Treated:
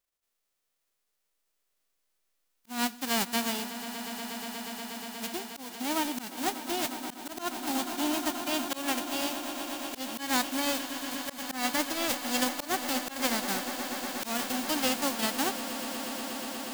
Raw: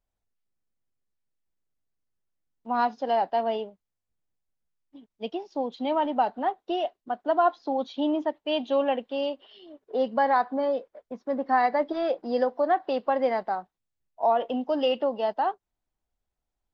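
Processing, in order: formants flattened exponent 0.1; echo with a slow build-up 120 ms, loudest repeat 8, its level -16 dB; slow attack 178 ms; trim -4.5 dB

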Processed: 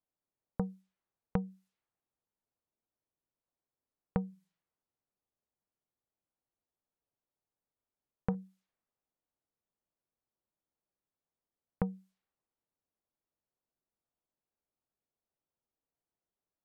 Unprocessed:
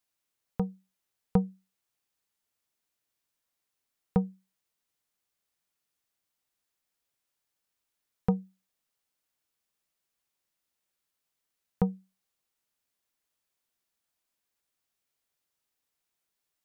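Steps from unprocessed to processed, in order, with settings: level-controlled noise filter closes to 800 Hz, open at -34 dBFS; 4.30–8.35 s: de-hum 166.9 Hz, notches 12; compression 6:1, threshold -27 dBFS, peak gain reduction 8.5 dB; trim -1 dB

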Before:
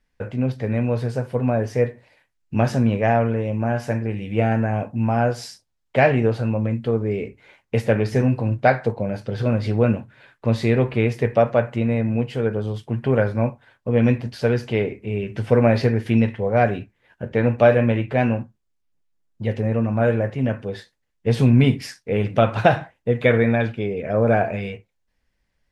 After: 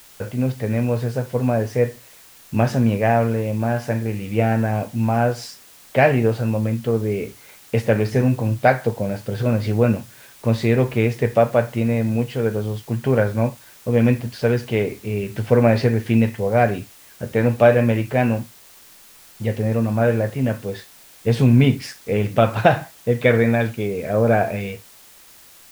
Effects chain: word length cut 8-bit, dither triangular; trim +1 dB

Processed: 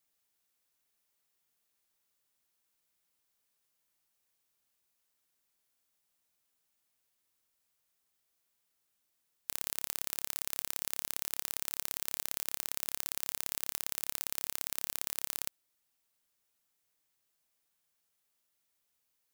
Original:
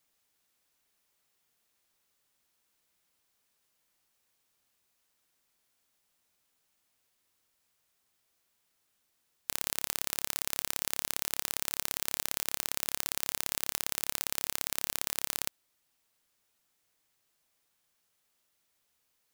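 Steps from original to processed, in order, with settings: treble shelf 8.1 kHz +5 dB; trim -6.5 dB

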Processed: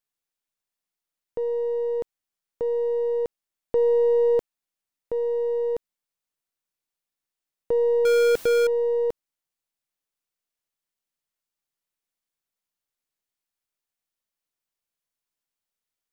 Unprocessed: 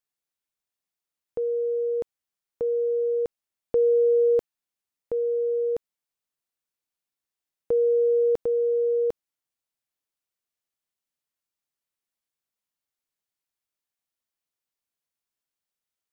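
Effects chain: partial rectifier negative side -3 dB; 8.05–8.67 s: power-law waveshaper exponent 0.35; trim +1.5 dB

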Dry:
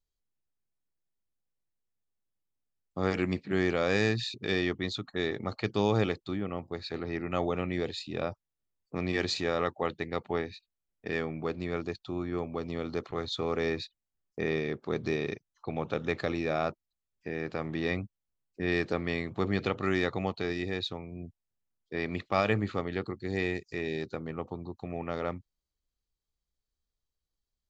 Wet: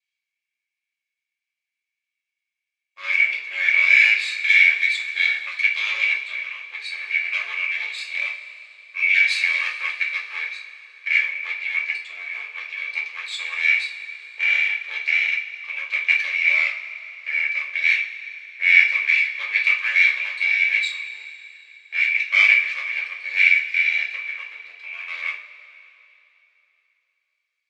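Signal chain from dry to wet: comb filter that takes the minimum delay 1.8 ms; resonant high-pass 2.3 kHz, resonance Q 10; distance through air 70 m; two-slope reverb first 0.35 s, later 3.3 s, from -18 dB, DRR -2.5 dB; trim +4 dB

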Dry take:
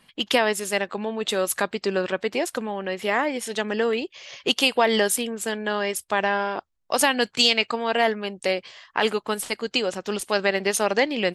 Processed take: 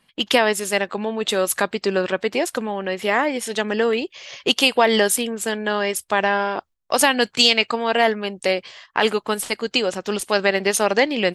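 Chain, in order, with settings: gate -46 dBFS, range -8 dB; trim +3.5 dB

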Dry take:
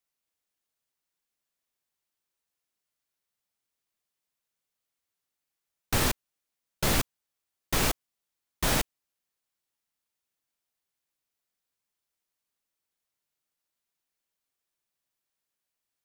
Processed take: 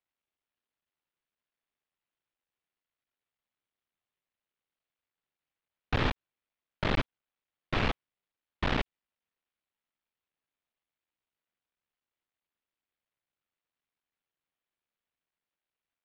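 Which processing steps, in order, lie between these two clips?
cycle switcher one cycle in 3, muted; low-pass 3.5 kHz 24 dB/octave

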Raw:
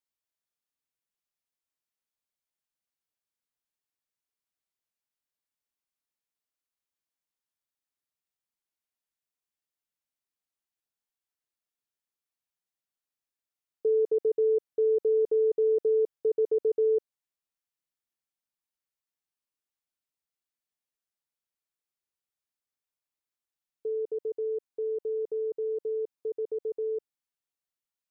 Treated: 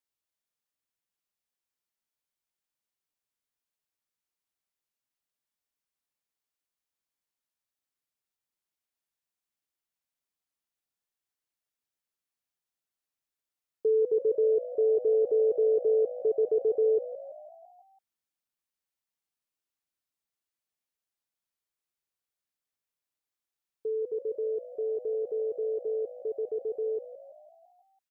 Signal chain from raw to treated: frequency-shifting echo 167 ms, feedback 58%, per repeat +56 Hz, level -15 dB

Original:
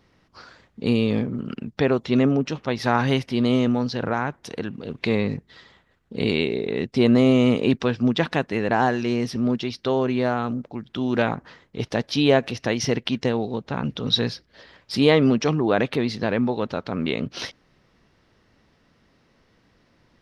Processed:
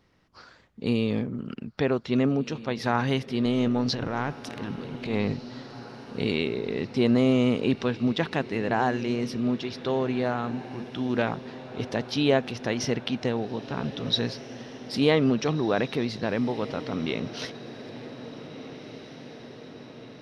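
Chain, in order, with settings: 3.45–5.33 s: transient shaper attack -10 dB, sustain +10 dB; on a send: echo that smears into a reverb 1693 ms, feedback 63%, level -15 dB; on the sum: trim -4.5 dB

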